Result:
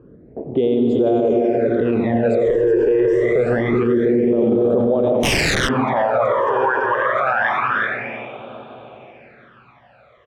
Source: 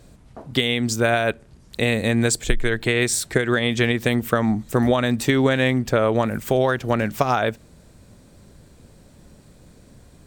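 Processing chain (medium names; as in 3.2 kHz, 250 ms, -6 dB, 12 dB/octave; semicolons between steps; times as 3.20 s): treble shelf 3.1 kHz -11 dB; delay 374 ms -6.5 dB; reverberation RT60 5.0 s, pre-delay 79 ms, DRR 1 dB; band-pass sweep 420 Hz -> 2.7 kHz, 4.52–8.48 s; 2.92–3.94 s: small resonant body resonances 1.2/2 kHz, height 10 dB, ringing for 20 ms; 5.23–5.69 s: integer overflow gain 22.5 dB; phase shifter stages 12, 0.26 Hz, lowest notch 210–1900 Hz; level-controlled noise filter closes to 2 kHz, open at -22 dBFS; loudness maximiser +26.5 dB; trim -8.5 dB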